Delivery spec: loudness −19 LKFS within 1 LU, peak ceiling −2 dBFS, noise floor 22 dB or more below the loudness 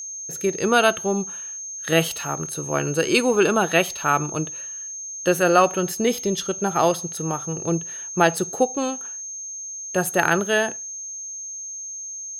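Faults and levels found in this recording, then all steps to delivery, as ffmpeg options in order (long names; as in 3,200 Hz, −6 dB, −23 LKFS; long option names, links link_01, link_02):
interfering tone 6,400 Hz; level of the tone −31 dBFS; integrated loudness −22.5 LKFS; sample peak −4.0 dBFS; target loudness −19.0 LKFS
→ -af "bandreject=frequency=6400:width=30"
-af "volume=3.5dB,alimiter=limit=-2dB:level=0:latency=1"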